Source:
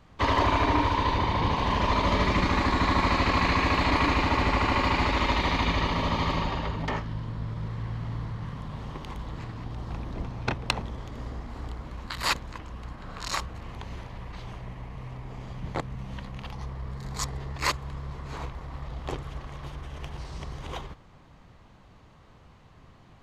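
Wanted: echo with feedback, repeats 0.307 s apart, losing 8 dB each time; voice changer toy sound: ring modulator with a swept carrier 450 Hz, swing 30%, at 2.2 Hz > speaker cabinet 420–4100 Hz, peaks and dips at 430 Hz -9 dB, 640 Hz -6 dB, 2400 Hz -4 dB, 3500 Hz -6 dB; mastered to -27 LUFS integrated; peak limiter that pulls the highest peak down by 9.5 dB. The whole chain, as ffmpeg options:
-af "alimiter=limit=-16.5dB:level=0:latency=1,aecho=1:1:307|614|921|1228|1535:0.398|0.159|0.0637|0.0255|0.0102,aeval=exprs='val(0)*sin(2*PI*450*n/s+450*0.3/2.2*sin(2*PI*2.2*n/s))':c=same,highpass=420,equalizer=f=430:t=q:w=4:g=-9,equalizer=f=640:t=q:w=4:g=-6,equalizer=f=2.4k:t=q:w=4:g=-4,equalizer=f=3.5k:t=q:w=4:g=-6,lowpass=f=4.1k:w=0.5412,lowpass=f=4.1k:w=1.3066,volume=9dB"

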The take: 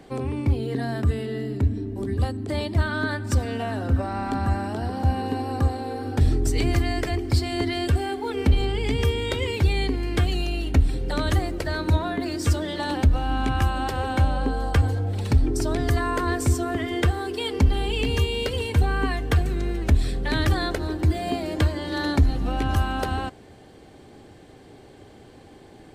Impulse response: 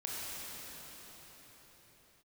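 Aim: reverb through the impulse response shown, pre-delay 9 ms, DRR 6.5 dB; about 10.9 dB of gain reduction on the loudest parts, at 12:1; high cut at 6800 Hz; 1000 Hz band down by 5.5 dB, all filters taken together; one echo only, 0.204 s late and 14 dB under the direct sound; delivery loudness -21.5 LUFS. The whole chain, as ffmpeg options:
-filter_complex "[0:a]lowpass=6.8k,equalizer=f=1k:t=o:g=-8,acompressor=threshold=-23dB:ratio=12,aecho=1:1:204:0.2,asplit=2[a][b];[1:a]atrim=start_sample=2205,adelay=9[c];[b][c]afir=irnorm=-1:irlink=0,volume=-10dB[d];[a][d]amix=inputs=2:normalize=0,volume=7dB"

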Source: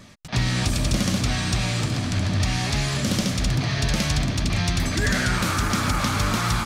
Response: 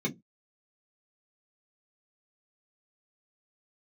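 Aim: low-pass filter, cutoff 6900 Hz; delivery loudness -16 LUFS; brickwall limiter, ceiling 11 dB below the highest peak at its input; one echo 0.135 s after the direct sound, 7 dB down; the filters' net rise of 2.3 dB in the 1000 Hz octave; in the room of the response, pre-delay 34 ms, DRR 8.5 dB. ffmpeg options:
-filter_complex "[0:a]lowpass=6.9k,equalizer=f=1k:t=o:g=3,alimiter=limit=-22.5dB:level=0:latency=1,aecho=1:1:135:0.447,asplit=2[a][b];[1:a]atrim=start_sample=2205,adelay=34[c];[b][c]afir=irnorm=-1:irlink=0,volume=-14.5dB[d];[a][d]amix=inputs=2:normalize=0,volume=12dB"

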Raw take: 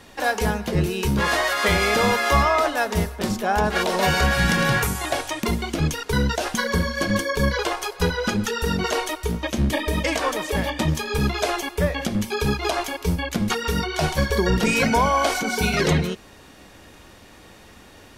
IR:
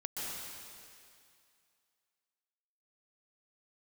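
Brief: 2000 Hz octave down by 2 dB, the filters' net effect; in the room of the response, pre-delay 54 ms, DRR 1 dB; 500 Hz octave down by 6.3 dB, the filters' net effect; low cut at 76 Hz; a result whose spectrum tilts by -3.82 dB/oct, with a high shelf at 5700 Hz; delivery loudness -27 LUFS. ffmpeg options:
-filter_complex "[0:a]highpass=76,equalizer=f=500:t=o:g=-8,equalizer=f=2k:t=o:g=-3,highshelf=f=5.7k:g=8.5,asplit=2[a][b];[1:a]atrim=start_sample=2205,adelay=54[c];[b][c]afir=irnorm=-1:irlink=0,volume=-3.5dB[d];[a][d]amix=inputs=2:normalize=0,volume=-6dB"

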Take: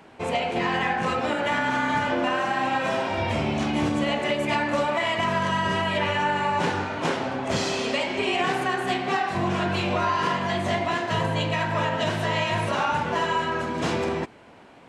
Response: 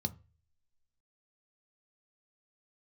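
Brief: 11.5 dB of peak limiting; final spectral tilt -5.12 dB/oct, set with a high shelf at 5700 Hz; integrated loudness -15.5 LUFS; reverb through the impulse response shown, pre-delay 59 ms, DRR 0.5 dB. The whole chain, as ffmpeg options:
-filter_complex "[0:a]highshelf=f=5.7k:g=5.5,alimiter=limit=-23.5dB:level=0:latency=1,asplit=2[a][b];[1:a]atrim=start_sample=2205,adelay=59[c];[b][c]afir=irnorm=-1:irlink=0,volume=-1.5dB[d];[a][d]amix=inputs=2:normalize=0,volume=10.5dB"

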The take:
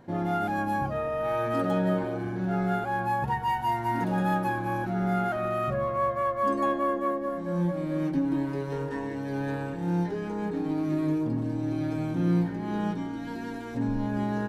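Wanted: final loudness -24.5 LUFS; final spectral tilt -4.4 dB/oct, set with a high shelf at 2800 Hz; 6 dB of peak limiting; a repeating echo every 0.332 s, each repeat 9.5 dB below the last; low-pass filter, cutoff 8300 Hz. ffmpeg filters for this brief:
-af "lowpass=8.3k,highshelf=f=2.8k:g=7.5,alimiter=limit=-20.5dB:level=0:latency=1,aecho=1:1:332|664|996|1328:0.335|0.111|0.0365|0.012,volume=4.5dB"

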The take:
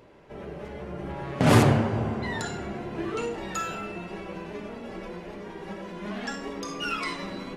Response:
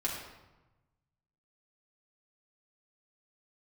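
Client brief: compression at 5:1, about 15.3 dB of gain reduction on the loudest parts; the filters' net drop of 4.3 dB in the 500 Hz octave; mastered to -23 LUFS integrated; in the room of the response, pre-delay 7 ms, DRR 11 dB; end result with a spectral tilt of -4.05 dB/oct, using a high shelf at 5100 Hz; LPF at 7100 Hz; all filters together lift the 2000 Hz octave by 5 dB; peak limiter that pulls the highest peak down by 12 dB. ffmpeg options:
-filter_complex "[0:a]lowpass=7.1k,equalizer=f=500:t=o:g=-6,equalizer=f=2k:t=o:g=7.5,highshelf=f=5.1k:g=-5.5,acompressor=threshold=-30dB:ratio=5,alimiter=level_in=3.5dB:limit=-24dB:level=0:latency=1,volume=-3.5dB,asplit=2[a][b];[1:a]atrim=start_sample=2205,adelay=7[c];[b][c]afir=irnorm=-1:irlink=0,volume=-16dB[d];[a][d]amix=inputs=2:normalize=0,volume=14dB"

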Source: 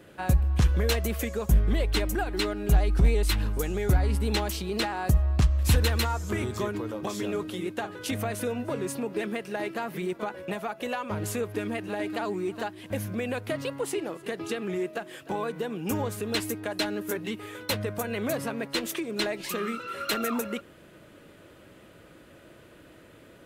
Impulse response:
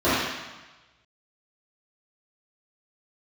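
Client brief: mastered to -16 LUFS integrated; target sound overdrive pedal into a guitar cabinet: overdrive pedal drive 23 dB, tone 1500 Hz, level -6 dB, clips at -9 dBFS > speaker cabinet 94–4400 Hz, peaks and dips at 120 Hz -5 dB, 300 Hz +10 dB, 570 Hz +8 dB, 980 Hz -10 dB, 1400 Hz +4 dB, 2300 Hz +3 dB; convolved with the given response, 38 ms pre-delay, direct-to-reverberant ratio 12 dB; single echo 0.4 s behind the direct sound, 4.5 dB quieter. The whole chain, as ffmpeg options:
-filter_complex "[0:a]aecho=1:1:400:0.596,asplit=2[a][b];[1:a]atrim=start_sample=2205,adelay=38[c];[b][c]afir=irnorm=-1:irlink=0,volume=-33dB[d];[a][d]amix=inputs=2:normalize=0,asplit=2[e][f];[f]highpass=f=720:p=1,volume=23dB,asoftclip=type=tanh:threshold=-9dB[g];[e][g]amix=inputs=2:normalize=0,lowpass=f=1.5k:p=1,volume=-6dB,highpass=94,equalizer=f=120:t=q:w=4:g=-5,equalizer=f=300:t=q:w=4:g=10,equalizer=f=570:t=q:w=4:g=8,equalizer=f=980:t=q:w=4:g=-10,equalizer=f=1.4k:t=q:w=4:g=4,equalizer=f=2.3k:t=q:w=4:g=3,lowpass=f=4.4k:w=0.5412,lowpass=f=4.4k:w=1.3066,volume=3dB"

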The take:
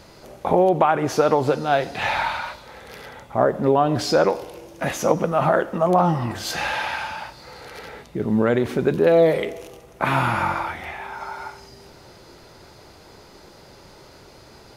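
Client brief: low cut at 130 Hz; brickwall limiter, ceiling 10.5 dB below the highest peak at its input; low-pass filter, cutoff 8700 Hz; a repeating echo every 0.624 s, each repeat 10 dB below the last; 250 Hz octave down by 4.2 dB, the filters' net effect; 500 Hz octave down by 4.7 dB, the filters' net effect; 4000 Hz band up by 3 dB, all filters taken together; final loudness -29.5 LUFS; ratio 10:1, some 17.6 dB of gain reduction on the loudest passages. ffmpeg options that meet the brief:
-af "highpass=130,lowpass=8.7k,equalizer=f=250:t=o:g=-3.5,equalizer=f=500:t=o:g=-5,equalizer=f=4k:t=o:g=4,acompressor=threshold=-34dB:ratio=10,alimiter=level_in=6dB:limit=-24dB:level=0:latency=1,volume=-6dB,aecho=1:1:624|1248|1872|2496:0.316|0.101|0.0324|0.0104,volume=11dB"

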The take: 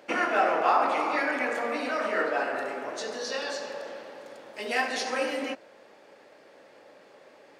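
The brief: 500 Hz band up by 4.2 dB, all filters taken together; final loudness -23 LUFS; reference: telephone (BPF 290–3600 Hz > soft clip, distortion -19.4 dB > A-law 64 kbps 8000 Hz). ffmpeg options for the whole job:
-af "highpass=290,lowpass=3.6k,equalizer=f=500:t=o:g=5.5,asoftclip=threshold=-14.5dB,volume=4.5dB" -ar 8000 -c:a pcm_alaw

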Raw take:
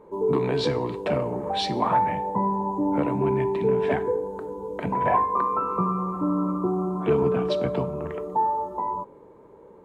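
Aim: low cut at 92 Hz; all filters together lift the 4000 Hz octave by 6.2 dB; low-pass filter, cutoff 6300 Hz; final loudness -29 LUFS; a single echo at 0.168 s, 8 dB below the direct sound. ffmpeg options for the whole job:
-af "highpass=92,lowpass=6.3k,equalizer=f=4k:t=o:g=7.5,aecho=1:1:168:0.398,volume=-5dB"

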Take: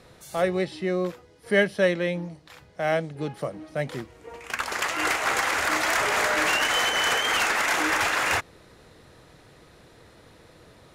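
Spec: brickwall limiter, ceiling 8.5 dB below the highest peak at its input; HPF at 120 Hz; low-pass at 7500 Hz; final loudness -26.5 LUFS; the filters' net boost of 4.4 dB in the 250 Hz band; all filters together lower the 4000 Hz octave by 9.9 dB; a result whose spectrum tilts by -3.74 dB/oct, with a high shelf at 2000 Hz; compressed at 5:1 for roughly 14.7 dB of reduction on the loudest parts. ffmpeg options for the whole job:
-af "highpass=120,lowpass=7.5k,equalizer=f=250:t=o:g=8,highshelf=f=2k:g=-8.5,equalizer=f=4k:t=o:g=-5.5,acompressor=threshold=-32dB:ratio=5,volume=11dB,alimiter=limit=-18dB:level=0:latency=1"

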